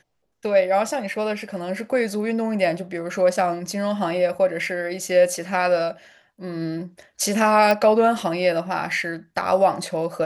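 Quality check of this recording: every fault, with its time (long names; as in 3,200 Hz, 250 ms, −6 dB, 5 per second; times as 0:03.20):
0:07.71: click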